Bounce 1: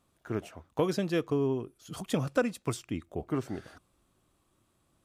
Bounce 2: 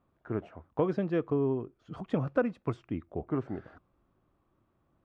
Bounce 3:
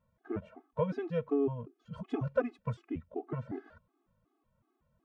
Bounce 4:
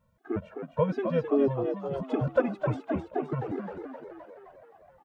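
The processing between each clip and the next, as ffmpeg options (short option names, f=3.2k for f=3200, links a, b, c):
-af "lowpass=1.6k"
-af "afftfilt=real='re*gt(sin(2*PI*2.7*pts/sr)*(1-2*mod(floor(b*sr/1024/220),2)),0)':imag='im*gt(sin(2*PI*2.7*pts/sr)*(1-2*mod(floor(b*sr/1024/220),2)),0)':win_size=1024:overlap=0.75"
-filter_complex "[0:a]asplit=9[a][b][c][d][e][f][g][h][i];[b]adelay=260,afreqshift=66,volume=-7dB[j];[c]adelay=520,afreqshift=132,volume=-11.3dB[k];[d]adelay=780,afreqshift=198,volume=-15.6dB[l];[e]adelay=1040,afreqshift=264,volume=-19.9dB[m];[f]adelay=1300,afreqshift=330,volume=-24.2dB[n];[g]adelay=1560,afreqshift=396,volume=-28.5dB[o];[h]adelay=1820,afreqshift=462,volume=-32.8dB[p];[i]adelay=2080,afreqshift=528,volume=-37.1dB[q];[a][j][k][l][m][n][o][p][q]amix=inputs=9:normalize=0,volume=5.5dB"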